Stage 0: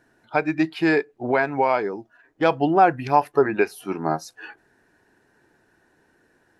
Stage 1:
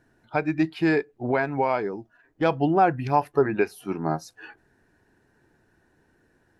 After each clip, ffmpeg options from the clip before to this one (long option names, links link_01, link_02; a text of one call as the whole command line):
ffmpeg -i in.wav -af "lowshelf=frequency=180:gain=11.5,volume=-4.5dB" out.wav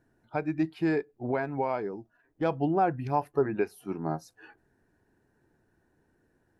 ffmpeg -i in.wav -af "equalizer=frequency=3200:width_type=o:width=2.9:gain=-6,volume=-4.5dB" out.wav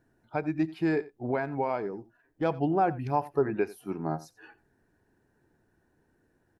ffmpeg -i in.wav -af "aecho=1:1:88:0.112" out.wav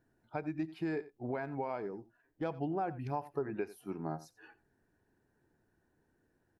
ffmpeg -i in.wav -af "acompressor=threshold=-28dB:ratio=2.5,volume=-5.5dB" out.wav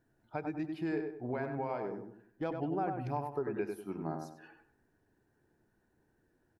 ffmpeg -i in.wav -filter_complex "[0:a]asplit=2[link_01][link_02];[link_02]adelay=97,lowpass=frequency=1800:poles=1,volume=-4.5dB,asplit=2[link_03][link_04];[link_04]adelay=97,lowpass=frequency=1800:poles=1,volume=0.37,asplit=2[link_05][link_06];[link_06]adelay=97,lowpass=frequency=1800:poles=1,volume=0.37,asplit=2[link_07][link_08];[link_08]adelay=97,lowpass=frequency=1800:poles=1,volume=0.37,asplit=2[link_09][link_10];[link_10]adelay=97,lowpass=frequency=1800:poles=1,volume=0.37[link_11];[link_01][link_03][link_05][link_07][link_09][link_11]amix=inputs=6:normalize=0" out.wav